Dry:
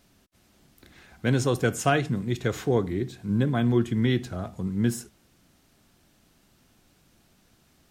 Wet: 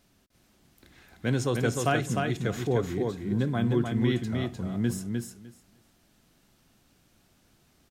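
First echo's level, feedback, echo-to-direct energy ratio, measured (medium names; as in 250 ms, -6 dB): -4.0 dB, 15%, -4.0 dB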